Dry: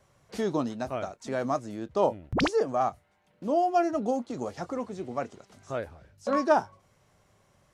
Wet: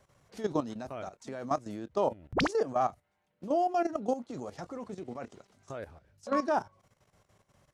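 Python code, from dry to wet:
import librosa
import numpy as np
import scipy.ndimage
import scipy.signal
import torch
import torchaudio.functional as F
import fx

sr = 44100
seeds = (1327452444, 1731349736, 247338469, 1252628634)

y = fx.level_steps(x, sr, step_db=13)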